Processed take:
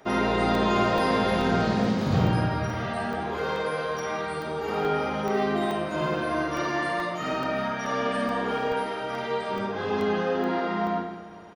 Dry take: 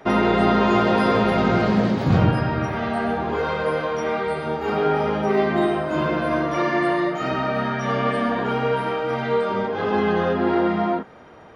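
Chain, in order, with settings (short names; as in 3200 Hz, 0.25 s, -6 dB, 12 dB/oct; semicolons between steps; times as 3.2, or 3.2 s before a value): tone controls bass -1 dB, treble +8 dB; doubler 50 ms -3 dB; feedback echo 0.204 s, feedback 52%, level -15 dB; on a send at -9.5 dB: reverb RT60 0.40 s, pre-delay 0.103 s; on the sum: crackling interface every 0.43 s, samples 64, zero, from 0.55; gain -7 dB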